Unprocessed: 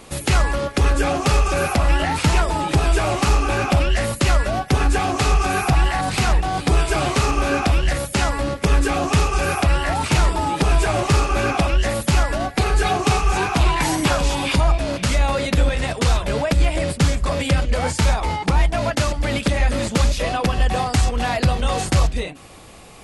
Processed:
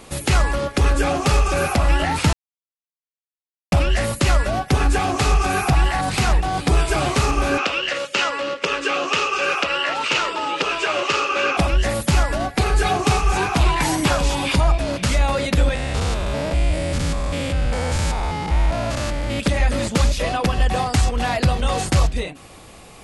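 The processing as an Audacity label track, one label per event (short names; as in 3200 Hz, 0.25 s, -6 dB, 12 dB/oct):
2.330000	3.720000	mute
7.580000	11.570000	speaker cabinet 420–6800 Hz, peaks and dips at 510 Hz +6 dB, 740 Hz -9 dB, 1300 Hz +5 dB, 2800 Hz +10 dB
15.750000	19.400000	stepped spectrum every 0.2 s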